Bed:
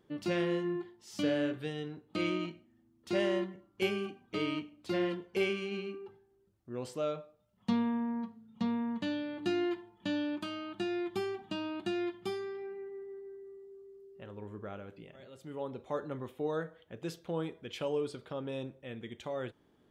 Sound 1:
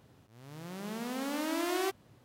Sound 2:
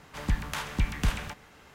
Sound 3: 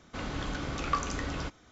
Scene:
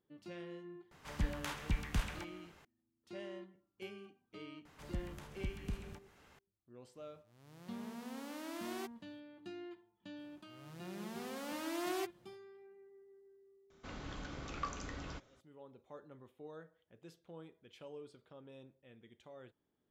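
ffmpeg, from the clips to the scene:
-filter_complex "[2:a]asplit=2[a][b];[1:a]asplit=2[c][d];[0:a]volume=-16.5dB[e];[b]acrossover=split=550|5600[f][g][h];[f]acompressor=threshold=-27dB:ratio=4[i];[g]acompressor=threshold=-50dB:ratio=4[j];[h]acompressor=threshold=-56dB:ratio=4[k];[i][j][k]amix=inputs=3:normalize=0[l];[d]aecho=1:1:5.6:0.44[m];[a]atrim=end=1.74,asetpts=PTS-STARTPTS,volume=-8.5dB,afade=t=in:d=0.004:c=hsin,afade=t=out:st=1.736:d=0.004:c=hsin,adelay=910[n];[l]atrim=end=1.74,asetpts=PTS-STARTPTS,volume=-9.5dB,afade=t=in:d=0.004:c=hsin,afade=t=out:st=1.736:d=0.004:c=hsin,adelay=205065S[o];[c]atrim=end=2.24,asetpts=PTS-STARTPTS,volume=-12dB,afade=t=in:d=0.004:c=hsin,afade=t=out:st=2.236:d=0.004:c=hsin,adelay=6960[p];[m]atrim=end=2.24,asetpts=PTS-STARTPTS,volume=-8dB,afade=t=in:d=0.05,afade=t=out:st=2.19:d=0.05,adelay=10150[q];[3:a]atrim=end=1.71,asetpts=PTS-STARTPTS,volume=-11dB,afade=t=in:d=0.004:c=hsin,afade=t=out:st=1.706:d=0.004:c=hsin,adelay=13700[r];[e][n][o][p][q][r]amix=inputs=6:normalize=0"

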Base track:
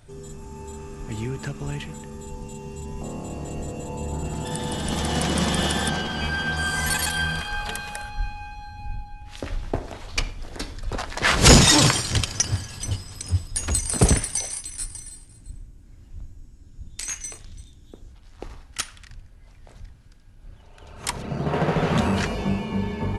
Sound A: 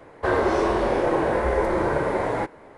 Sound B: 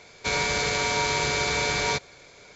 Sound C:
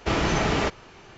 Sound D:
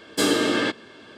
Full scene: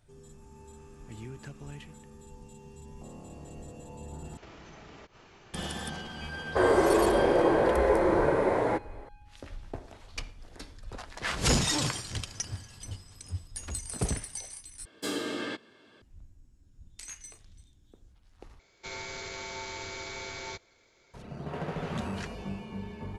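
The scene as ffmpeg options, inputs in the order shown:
-filter_complex "[0:a]volume=-13dB[a];[3:a]acompressor=threshold=-41dB:ratio=6:attack=3.2:release=140:knee=1:detection=peak[b];[1:a]equalizer=f=400:t=o:w=1.7:g=4[c];[2:a]afreqshift=-48[d];[a]asplit=4[e][f][g][h];[e]atrim=end=4.374[i];[b]atrim=end=1.17,asetpts=PTS-STARTPTS,volume=-7dB[j];[f]atrim=start=5.536:end=14.854[k];[4:a]atrim=end=1.17,asetpts=PTS-STARTPTS,volume=-12.5dB[l];[g]atrim=start=16.016:end=18.594[m];[d]atrim=end=2.55,asetpts=PTS-STARTPTS,volume=-14.5dB[n];[h]atrim=start=21.136[o];[c]atrim=end=2.77,asetpts=PTS-STARTPTS,volume=-4.5dB,afade=t=in:d=0.004:c=hsin,afade=t=out:st=2.766:d=0.004:c=hsin,adelay=6320[p];[i][j]acrossfade=d=0.004:c1=hsin:c2=hsin[q];[q][k]acrossfade=d=0.004:c1=hsin:c2=hsin[r];[r][l]acrossfade=d=0.004:c1=hsin:c2=hsin[s];[s][m]acrossfade=d=0.004:c1=hsin:c2=hsin[t];[t][n]acrossfade=d=0.004:c1=hsin:c2=hsin[u];[u][o]acrossfade=d=0.004:c1=hsin:c2=hsin[v];[v][p]amix=inputs=2:normalize=0"

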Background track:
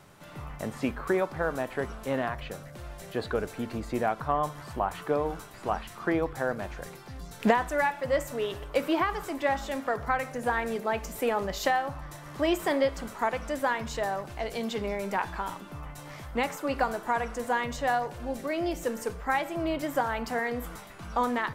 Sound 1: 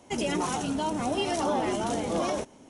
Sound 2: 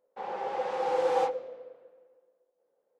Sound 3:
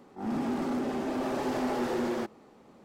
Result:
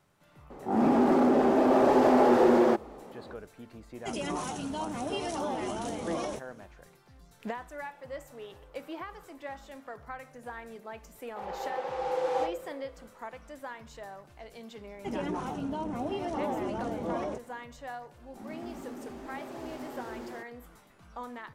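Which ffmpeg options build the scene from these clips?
-filter_complex "[3:a]asplit=2[a][b];[1:a]asplit=2[c][d];[2:a]asplit=2[e][f];[0:a]volume=-14dB[g];[a]equalizer=f=580:t=o:w=2.9:g=12[h];[e]acompressor=threshold=-46dB:ratio=6:attack=3.2:release=140:knee=1:detection=peak[i];[d]lowpass=f=1.1k:p=1[j];[b]crystalizer=i=0.5:c=0[k];[h]atrim=end=2.84,asetpts=PTS-STARTPTS,volume=-0.5dB,afade=t=in:d=0.004:c=hsin,afade=t=out:st=2.836:d=0.004:c=hsin,adelay=500[l];[c]atrim=end=2.69,asetpts=PTS-STARTPTS,volume=-6dB,afade=t=in:d=0.004:c=hsin,afade=t=out:st=2.686:d=0.004:c=hsin,adelay=3950[m];[i]atrim=end=2.99,asetpts=PTS-STARTPTS,volume=-14dB,afade=t=in:d=0.004:c=hsin,afade=t=out:st=2.986:d=0.004:c=hsin,adelay=7650[n];[f]atrim=end=2.99,asetpts=PTS-STARTPTS,volume=-3dB,afade=t=in:d=0.004:c=hsin,afade=t=out:st=2.986:d=0.004:c=hsin,adelay=11190[o];[j]atrim=end=2.69,asetpts=PTS-STARTPTS,volume=-4dB,afade=t=in:d=0.004:c=hsin,afade=t=out:st=2.686:d=0.004:c=hsin,adelay=14940[p];[k]atrim=end=2.84,asetpts=PTS-STARTPTS,volume=-12dB,afade=t=in:d=0.004:c=hsin,afade=t=out:st=2.836:d=0.004:c=hsin,adelay=18170[q];[g][l][m][n][o][p][q]amix=inputs=7:normalize=0"

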